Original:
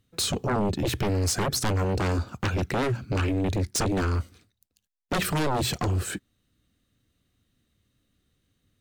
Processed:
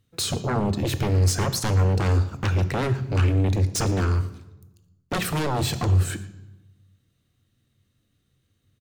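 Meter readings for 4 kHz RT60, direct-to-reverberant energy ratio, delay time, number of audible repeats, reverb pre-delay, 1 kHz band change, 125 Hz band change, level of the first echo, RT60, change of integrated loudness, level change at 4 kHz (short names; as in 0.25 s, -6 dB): 0.75 s, 11.5 dB, 0.115 s, 1, 3 ms, +0.5 dB, +6.5 dB, -20.0 dB, 1.1 s, +3.5 dB, +0.5 dB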